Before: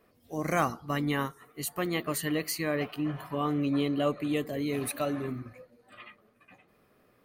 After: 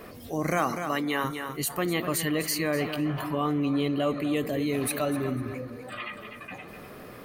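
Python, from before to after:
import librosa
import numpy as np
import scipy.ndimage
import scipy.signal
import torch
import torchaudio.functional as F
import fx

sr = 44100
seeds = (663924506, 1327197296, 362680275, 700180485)

y = fx.highpass(x, sr, hz=fx.line((0.58, 170.0), (1.23, 400.0)), slope=12, at=(0.58, 1.23), fade=0.02)
y = fx.echo_feedback(y, sr, ms=249, feedback_pct=17, wet_db=-14.0)
y = fx.env_flatten(y, sr, amount_pct=50)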